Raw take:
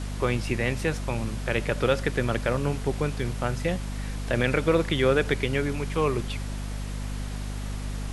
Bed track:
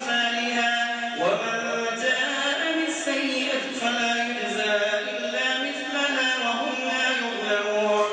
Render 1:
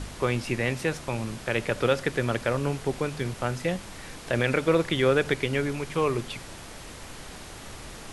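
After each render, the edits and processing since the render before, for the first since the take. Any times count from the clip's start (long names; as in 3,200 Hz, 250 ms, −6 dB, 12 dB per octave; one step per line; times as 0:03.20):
hum removal 50 Hz, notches 5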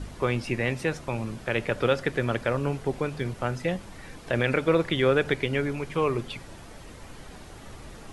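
broadband denoise 8 dB, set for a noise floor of −43 dBFS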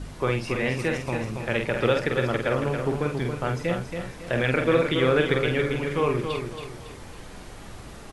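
double-tracking delay 47 ms −5 dB
repeating echo 277 ms, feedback 37%, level −6.5 dB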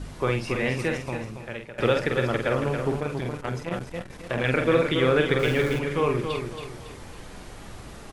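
0:00.81–0:01.78: fade out, to −19 dB
0:03.00–0:04.45: saturating transformer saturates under 650 Hz
0:05.39–0:05.79: converter with a step at zero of −33 dBFS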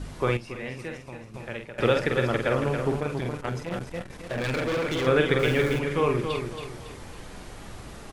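0:00.37–0:01.34: clip gain −9.5 dB
0:03.49–0:05.07: gain into a clipping stage and back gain 24.5 dB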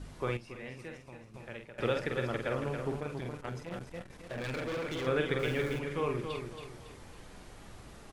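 level −9 dB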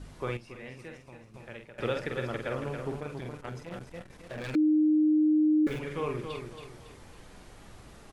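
0:04.55–0:05.67: beep over 307 Hz −20 dBFS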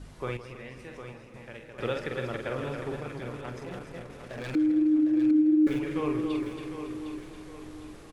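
repeating echo 756 ms, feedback 42%, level −9.5 dB
feedback echo with a swinging delay time 160 ms, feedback 60%, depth 132 cents, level −13 dB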